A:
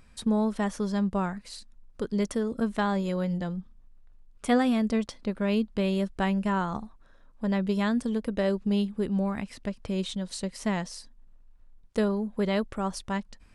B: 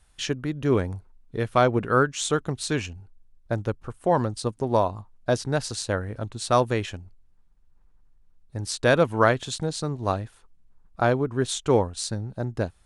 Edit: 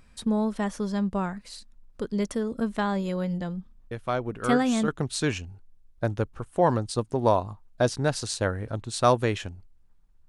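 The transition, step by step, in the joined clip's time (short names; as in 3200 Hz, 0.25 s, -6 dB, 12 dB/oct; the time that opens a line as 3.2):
A
3.91 add B from 1.39 s 0.97 s -8.5 dB
4.88 switch to B from 2.36 s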